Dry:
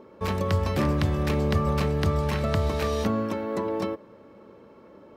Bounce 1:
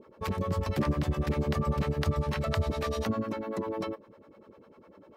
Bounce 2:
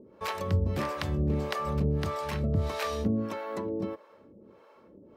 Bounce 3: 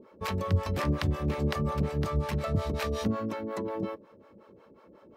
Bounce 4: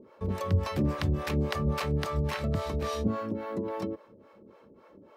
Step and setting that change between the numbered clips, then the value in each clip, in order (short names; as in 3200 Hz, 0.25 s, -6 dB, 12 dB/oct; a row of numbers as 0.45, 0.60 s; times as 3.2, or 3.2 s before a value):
harmonic tremolo, rate: 10, 1.6, 5.5, 3.6 Hz